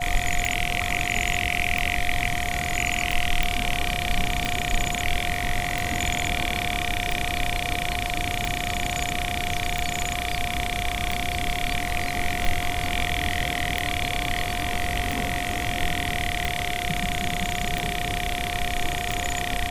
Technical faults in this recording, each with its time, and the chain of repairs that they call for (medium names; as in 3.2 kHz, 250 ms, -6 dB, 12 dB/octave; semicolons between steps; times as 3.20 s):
tick 45 rpm
whine 710 Hz -30 dBFS
3.43 s: pop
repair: de-click; band-stop 710 Hz, Q 30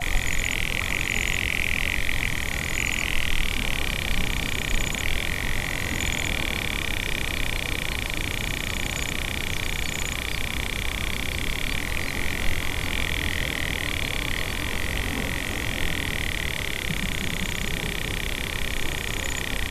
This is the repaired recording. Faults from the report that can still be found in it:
nothing left